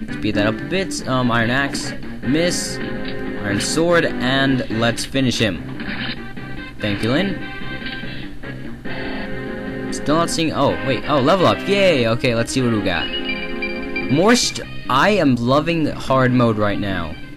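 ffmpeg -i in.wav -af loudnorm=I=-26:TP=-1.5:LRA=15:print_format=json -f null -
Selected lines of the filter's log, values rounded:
"input_i" : "-18.8",
"input_tp" : "-6.2",
"input_lra" : "5.2",
"input_thresh" : "-29.0",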